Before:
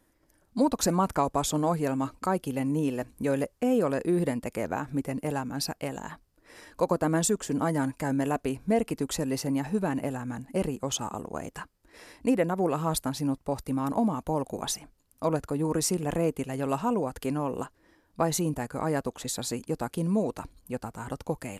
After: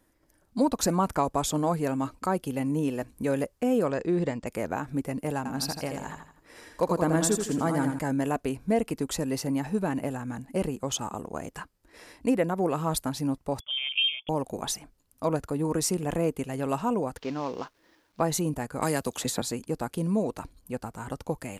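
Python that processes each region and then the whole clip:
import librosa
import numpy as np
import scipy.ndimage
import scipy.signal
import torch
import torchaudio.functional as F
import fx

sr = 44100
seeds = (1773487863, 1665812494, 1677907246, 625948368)

y = fx.chain(x, sr, fx.steep_lowpass(hz=7700.0, slope=48),
    fx.peak_eq(hz=250.0, db=-4.5, octaves=0.32), at=(3.88, 4.47))
y = fx.chain(y, sr, fx.echo_feedback(ms=82, feedback_pct=39, wet_db=-6.0),
    fx.clip_hard(threshold_db=-14.0), at=(5.37, 7.99))
y = fx.chain(y, sr, fx.peak_eq(hz=1600.0, db=-11.5, octaves=0.21),
    fx.freq_invert(carrier_hz=3400),
    fx.upward_expand(threshold_db=-38.0, expansion=1.5), at=(13.6, 14.29))
y = fx.chain(y, sr, fx.cvsd(bps=32000),
    fx.low_shelf(hz=160.0, db=-11.5),
    fx.quant_dither(seeds[0], bits=12, dither='none'), at=(17.17, 18.2))
y = fx.chain(y, sr, fx.highpass(hz=46.0, slope=12),
    fx.high_shelf(hz=11000.0, db=3.5),
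    fx.band_squash(depth_pct=100), at=(18.82, 19.42))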